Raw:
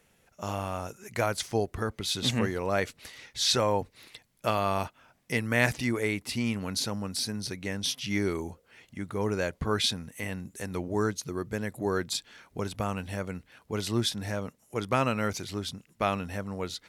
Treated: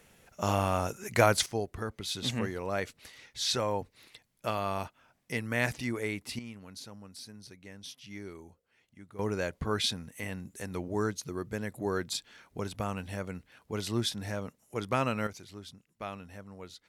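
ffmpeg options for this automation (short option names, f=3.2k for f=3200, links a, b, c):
-af "asetnsamples=n=441:p=0,asendcmd='1.46 volume volume -5dB;6.39 volume volume -15dB;9.19 volume volume -3dB;15.27 volume volume -12dB',volume=5dB"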